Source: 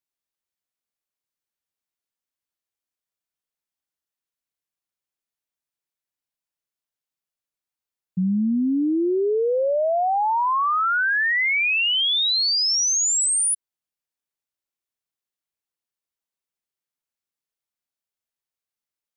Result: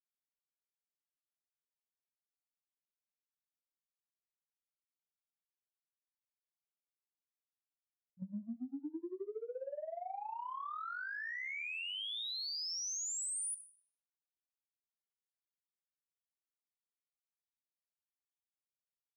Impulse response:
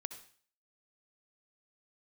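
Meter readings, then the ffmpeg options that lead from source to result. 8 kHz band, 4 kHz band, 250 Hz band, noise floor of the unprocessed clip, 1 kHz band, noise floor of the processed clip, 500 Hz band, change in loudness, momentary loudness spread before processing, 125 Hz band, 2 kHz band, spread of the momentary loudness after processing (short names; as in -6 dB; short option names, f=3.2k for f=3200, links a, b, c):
-18.5 dB, -20.0 dB, -22.5 dB, under -85 dBFS, -22.0 dB, under -85 dBFS, -22.5 dB, -20.5 dB, 4 LU, -23.0 dB, -21.5 dB, 8 LU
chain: -filter_complex "[0:a]asplit=2[a][b];[b]adelay=44,volume=-9dB[c];[a][c]amix=inputs=2:normalize=0,acontrast=72,agate=range=-43dB:threshold=-11dB:ratio=16:detection=peak,acompressor=threshold=-36dB:ratio=6,asplit=2[d][e];[1:a]atrim=start_sample=2205,highshelf=f=4.3k:g=7.5[f];[e][f]afir=irnorm=-1:irlink=0,volume=0dB[g];[d][g]amix=inputs=2:normalize=0,volume=-9dB"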